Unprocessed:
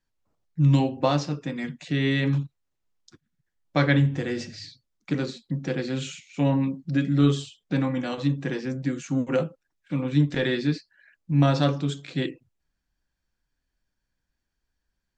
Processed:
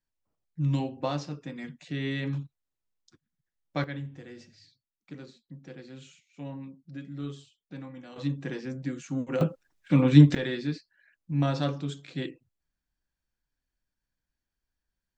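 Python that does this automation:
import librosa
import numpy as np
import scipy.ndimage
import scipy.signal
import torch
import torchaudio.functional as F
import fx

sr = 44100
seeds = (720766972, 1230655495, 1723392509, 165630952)

y = fx.gain(x, sr, db=fx.steps((0.0, -8.0), (3.84, -17.0), (8.16, -6.0), (9.41, 6.0), (10.35, -6.5)))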